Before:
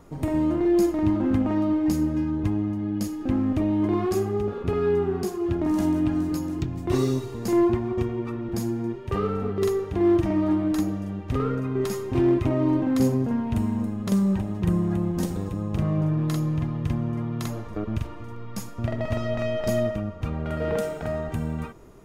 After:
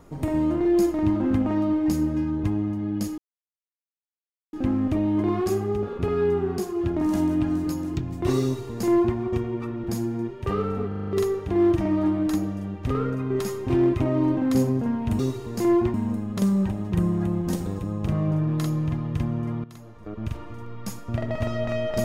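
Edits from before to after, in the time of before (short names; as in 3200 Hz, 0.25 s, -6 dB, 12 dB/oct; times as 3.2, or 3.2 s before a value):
3.18 insert silence 1.35 s
7.07–7.82 copy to 13.64
9.53 stutter 0.04 s, 6 plays
17.34–18.09 fade in quadratic, from -15.5 dB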